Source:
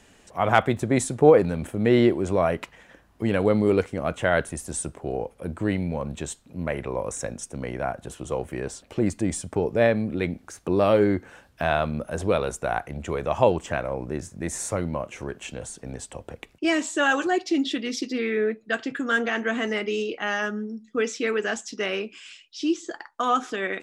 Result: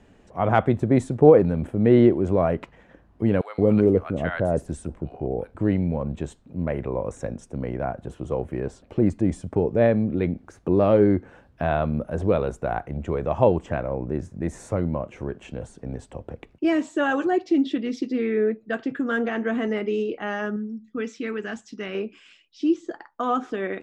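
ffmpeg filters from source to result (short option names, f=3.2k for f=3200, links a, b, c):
-filter_complex "[0:a]asettb=1/sr,asplit=3[a][b][c];[a]atrim=end=3.414[d];[b]atrim=start=3.41:end=5.55,asetpts=PTS-STARTPTS,afade=t=in:d=0.004:c=qsin,afade=t=out:st=2.136:d=0.004:c=qsin,acrossover=split=940[e][f];[e]adelay=170[g];[g][f]amix=inputs=2:normalize=0,atrim=end_sample=94374[h];[c]atrim=start=5.546[i];[d][h]acrossfade=d=0.004:c1=hsin:c2=qsin[j];[j][i]acrossfade=d=0.004:c1=qsin:c2=hsin,asettb=1/sr,asplit=3[k][l][m];[k]atrim=end=20.564[n];[l]atrim=start=20.56:end=21.95,asetpts=PTS-STARTPTS,afade=t=in:d=0.004:c=qsin,afade=t=out:st=1.386:d=0.004:c=qsin,equalizer=f=540:t=o:w=1.6:g=-9[o];[m]atrim=start=21.946[p];[n][o]acrossfade=d=0.004:c1=hsin:c2=qsin[q];[q][p]acrossfade=d=0.004:c1=qsin:c2=hsin,lowpass=f=2.3k:p=1,tiltshelf=f=740:g=4.5"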